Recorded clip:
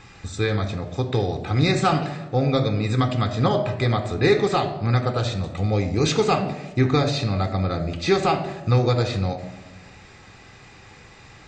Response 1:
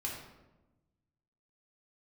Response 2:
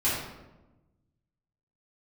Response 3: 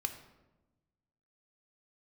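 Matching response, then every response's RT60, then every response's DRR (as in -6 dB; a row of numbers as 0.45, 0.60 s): 3; 1.1, 1.1, 1.1 s; -3.0, -10.5, 6.5 dB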